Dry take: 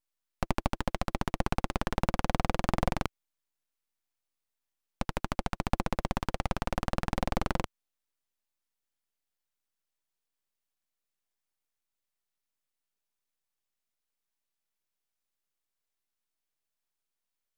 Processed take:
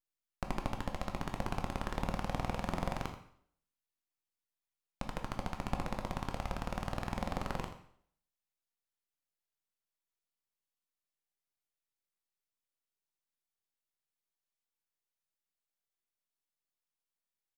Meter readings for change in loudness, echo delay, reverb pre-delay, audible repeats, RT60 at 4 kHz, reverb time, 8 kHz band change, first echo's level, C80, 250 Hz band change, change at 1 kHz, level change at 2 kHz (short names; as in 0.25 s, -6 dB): -6.0 dB, 83 ms, 6 ms, 1, 0.60 s, 0.60 s, -6.5 dB, -13.0 dB, 10.0 dB, -6.0 dB, -6.0 dB, -6.5 dB